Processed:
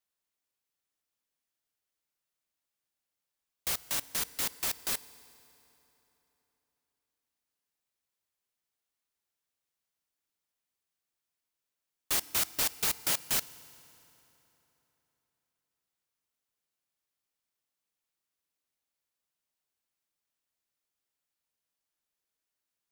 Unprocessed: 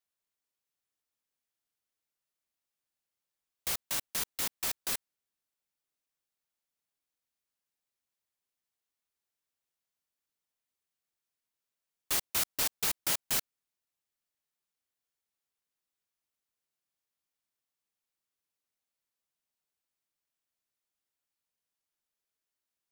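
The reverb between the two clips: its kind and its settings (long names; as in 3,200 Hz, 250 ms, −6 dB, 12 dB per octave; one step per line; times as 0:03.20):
feedback delay network reverb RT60 3.6 s, high-frequency decay 0.75×, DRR 17 dB
level +1 dB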